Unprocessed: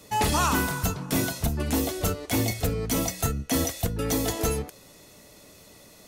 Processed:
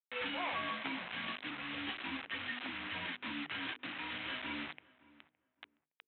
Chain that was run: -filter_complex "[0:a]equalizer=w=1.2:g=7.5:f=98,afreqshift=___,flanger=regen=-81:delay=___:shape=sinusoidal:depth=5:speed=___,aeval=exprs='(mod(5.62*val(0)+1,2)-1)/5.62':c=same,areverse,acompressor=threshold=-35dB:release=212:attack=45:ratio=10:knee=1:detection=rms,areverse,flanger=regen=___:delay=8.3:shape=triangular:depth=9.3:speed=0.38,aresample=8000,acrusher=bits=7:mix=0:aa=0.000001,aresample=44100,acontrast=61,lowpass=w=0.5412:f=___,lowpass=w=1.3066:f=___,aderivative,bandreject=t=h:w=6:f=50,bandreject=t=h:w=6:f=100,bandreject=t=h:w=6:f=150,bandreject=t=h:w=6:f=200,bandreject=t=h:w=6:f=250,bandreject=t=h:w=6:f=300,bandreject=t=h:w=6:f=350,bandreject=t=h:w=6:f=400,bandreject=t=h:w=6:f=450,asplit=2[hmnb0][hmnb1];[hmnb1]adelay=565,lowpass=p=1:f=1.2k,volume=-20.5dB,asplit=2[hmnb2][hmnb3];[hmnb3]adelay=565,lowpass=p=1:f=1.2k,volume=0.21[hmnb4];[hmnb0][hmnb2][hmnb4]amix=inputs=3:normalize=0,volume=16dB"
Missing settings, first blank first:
-360, 6.1, 1.3, 1, 2.7k, 2.7k